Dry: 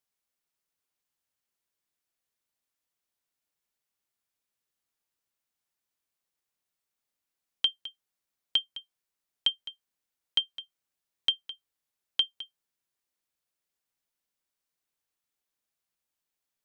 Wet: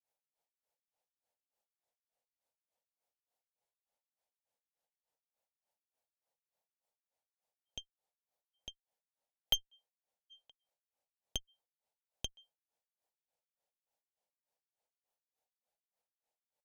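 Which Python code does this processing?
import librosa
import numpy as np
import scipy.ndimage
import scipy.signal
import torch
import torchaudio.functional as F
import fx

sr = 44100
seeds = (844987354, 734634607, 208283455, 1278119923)

y = fx.granulator(x, sr, seeds[0], grain_ms=231.0, per_s=3.4, spray_ms=100.0, spread_st=0)
y = fx.band_shelf(y, sr, hz=650.0, db=14.0, octaves=1.2)
y = fx.cheby_harmonics(y, sr, harmonics=(8,), levels_db=(-14,), full_scale_db=-14.0)
y = F.gain(torch.from_numpy(y), -5.0).numpy()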